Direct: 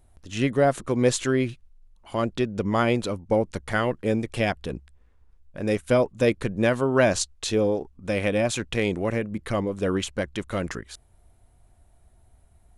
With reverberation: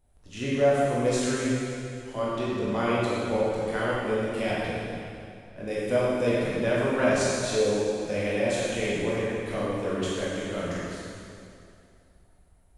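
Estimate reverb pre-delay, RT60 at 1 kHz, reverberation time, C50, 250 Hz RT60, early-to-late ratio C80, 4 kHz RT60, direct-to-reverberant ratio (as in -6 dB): 7 ms, 2.5 s, 2.5 s, -3.5 dB, 2.6 s, -1.5 dB, 2.3 s, -8.0 dB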